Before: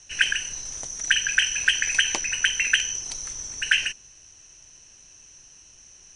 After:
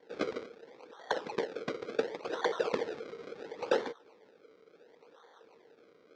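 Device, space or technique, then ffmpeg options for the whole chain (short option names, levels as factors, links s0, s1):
circuit-bent sampling toy: -filter_complex "[0:a]highpass=f=930:w=0.5412,highpass=f=930:w=1.3066,asettb=1/sr,asplit=3[s0][s1][s2];[s0]atrim=end=0.474[s3];[s1]atrim=start=0.47:end=2.25,asetpts=PTS-STARTPTS,afade=t=in:d=0.004:c=qsin,afade=t=out:st=1.776:d=0.004:c=qsin,aemphasis=mode=reproduction:type=75fm[s4];[s2]atrim=start=2.246[s5];[s3][s4]acrossfade=d=0.004:c1=hsin:c2=qsin[s6];[s6][s5]acrossfade=d=0.004:c1=qsin:c2=hsin,acrusher=samples=34:mix=1:aa=0.000001:lfo=1:lforange=34:lforate=0.71,highpass=430,equalizer=f=460:t=q:w=4:g=10,equalizer=f=680:t=q:w=4:g=-8,equalizer=f=1100:t=q:w=4:g=-4,equalizer=f=1700:t=q:w=4:g=-3,equalizer=f=2900:t=q:w=4:g=-8,equalizer=f=4400:t=q:w=4:g=-3,lowpass=f=4700:w=0.5412,lowpass=f=4700:w=1.3066,volume=0.473"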